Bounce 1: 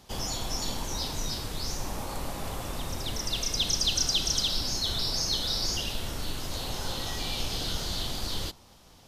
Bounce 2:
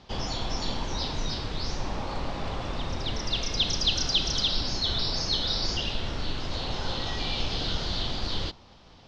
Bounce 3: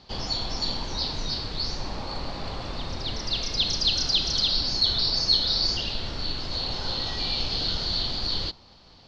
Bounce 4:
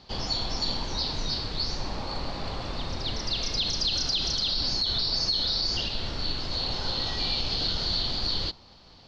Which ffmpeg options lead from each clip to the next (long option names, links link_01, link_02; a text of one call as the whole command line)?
ffmpeg -i in.wav -af "lowpass=frequency=4800:width=0.5412,lowpass=frequency=4800:width=1.3066,volume=3dB" out.wav
ffmpeg -i in.wav -af "equalizer=frequency=4400:width=5.9:gain=13,volume=-1.5dB" out.wav
ffmpeg -i in.wav -af "alimiter=limit=-17.5dB:level=0:latency=1:release=66" out.wav